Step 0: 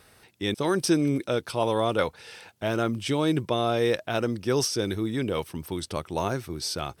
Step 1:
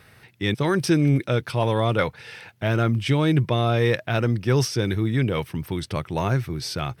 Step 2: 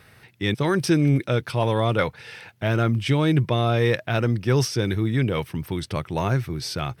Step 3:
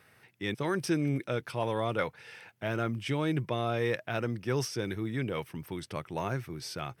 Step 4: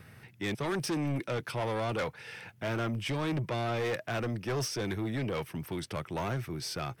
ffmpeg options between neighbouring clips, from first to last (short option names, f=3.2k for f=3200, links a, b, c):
-af "equalizer=f=125:t=o:w=1:g=12,equalizer=f=2k:t=o:w=1:g=7,equalizer=f=8k:t=o:w=1:g=-5,acontrast=35,volume=-4.5dB"
-af anull
-af "highpass=f=200:p=1,equalizer=f=4k:w=2.3:g=-4.5,volume=-7.5dB"
-filter_complex "[0:a]acrossover=split=220|650|3600[a][b][c][d];[a]acompressor=mode=upward:threshold=-47dB:ratio=2.5[e];[e][b][c][d]amix=inputs=4:normalize=0,asoftclip=type=tanh:threshold=-32dB,volume=4dB"